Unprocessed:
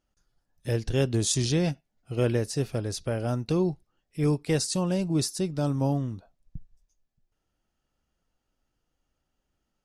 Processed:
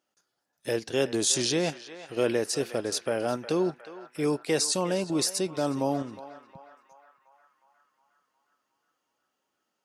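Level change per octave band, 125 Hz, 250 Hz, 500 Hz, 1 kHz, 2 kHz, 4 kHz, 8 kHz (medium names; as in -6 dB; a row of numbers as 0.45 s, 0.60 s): -11.0 dB, -2.0 dB, +2.0 dB, +3.5 dB, +3.5 dB, +3.5 dB, +3.5 dB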